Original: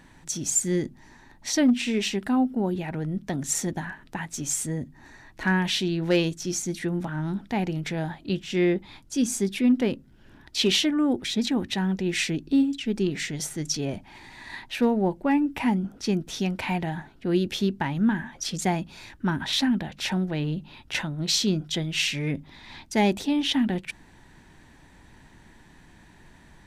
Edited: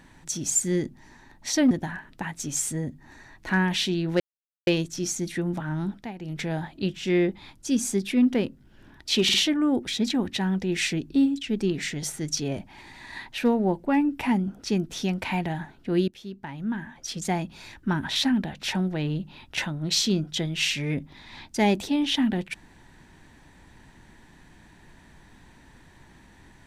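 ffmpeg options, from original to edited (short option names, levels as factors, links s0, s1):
-filter_complex "[0:a]asplit=8[s0][s1][s2][s3][s4][s5][s6][s7];[s0]atrim=end=1.712[s8];[s1]atrim=start=3.648:end=6.14,asetpts=PTS-STARTPTS,afade=t=out:st=2.488:d=0.004:c=hsin,apad=pad_dur=0.47[s9];[s2]atrim=start=6.14:end=7.6,asetpts=PTS-STARTPTS,afade=t=in:d=0.004:c=hsin,afade=t=out:st=1.22:d=0.24:silence=0.199526[s10];[s3]atrim=start=7.6:end=7.64,asetpts=PTS-STARTPTS,volume=0.2[s11];[s4]atrim=start=7.64:end=10.762,asetpts=PTS-STARTPTS,afade=t=in:d=0.24:silence=0.199526[s12];[s5]atrim=start=10.708:end=10.762[s13];[s6]atrim=start=10.708:end=17.45,asetpts=PTS-STARTPTS,afade=t=out:st=6.738:d=0.004:c=hsin:silence=0.0944061[s14];[s7]atrim=start=17.45,asetpts=PTS-STARTPTS,afade=t=in:d=1.56:silence=0.0944061[s15];[s9][s10][s11][s12]concat=n=4:v=0:a=1[s16];[s8][s16]acrossfade=d=0.004:c1=hsin:c2=hsin[s17];[s17][s13]acrossfade=d=0.004:c1=hsin:c2=hsin[s18];[s14][s15]concat=n=2:v=0:a=1[s19];[s18][s19]acrossfade=d=0.004:c1=hsin:c2=hsin"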